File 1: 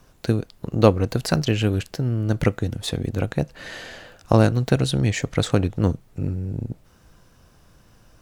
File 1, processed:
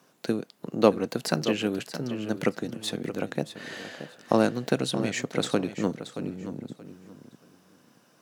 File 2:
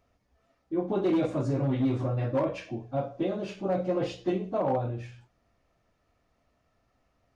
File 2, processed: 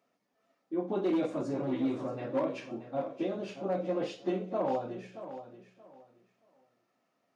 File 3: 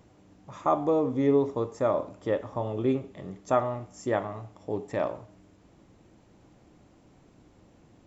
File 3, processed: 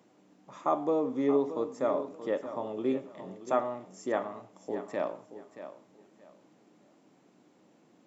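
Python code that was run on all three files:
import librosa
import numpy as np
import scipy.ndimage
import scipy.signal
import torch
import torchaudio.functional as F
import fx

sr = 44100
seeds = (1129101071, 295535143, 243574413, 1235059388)

p1 = scipy.signal.sosfilt(scipy.signal.butter(4, 180.0, 'highpass', fs=sr, output='sos'), x)
p2 = p1 + fx.echo_feedback(p1, sr, ms=627, feedback_pct=23, wet_db=-12, dry=0)
y = F.gain(torch.from_numpy(p2), -3.5).numpy()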